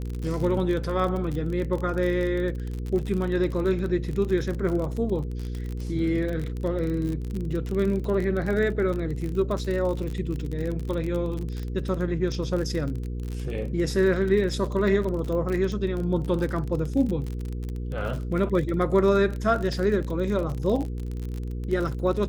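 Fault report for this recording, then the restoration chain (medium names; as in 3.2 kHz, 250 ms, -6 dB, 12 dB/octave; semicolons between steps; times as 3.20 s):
crackle 38 per s -29 dBFS
hum 60 Hz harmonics 8 -31 dBFS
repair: de-click; de-hum 60 Hz, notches 8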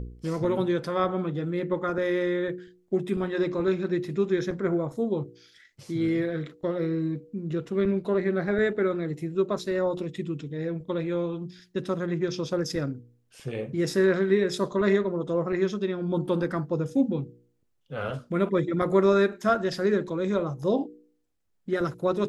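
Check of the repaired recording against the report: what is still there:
nothing left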